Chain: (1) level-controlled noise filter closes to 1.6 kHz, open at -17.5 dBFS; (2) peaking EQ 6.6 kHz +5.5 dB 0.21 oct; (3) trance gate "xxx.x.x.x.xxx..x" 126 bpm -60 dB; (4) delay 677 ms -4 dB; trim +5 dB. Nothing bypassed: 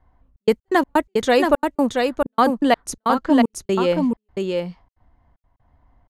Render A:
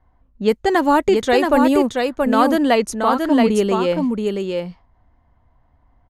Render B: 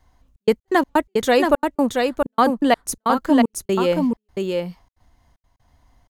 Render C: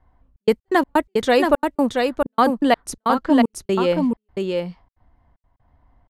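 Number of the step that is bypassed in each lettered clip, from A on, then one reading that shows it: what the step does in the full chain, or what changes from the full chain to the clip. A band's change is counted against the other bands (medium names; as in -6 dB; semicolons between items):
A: 3, 8 kHz band -1.5 dB; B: 1, 8 kHz band +3.0 dB; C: 2, 8 kHz band -2.0 dB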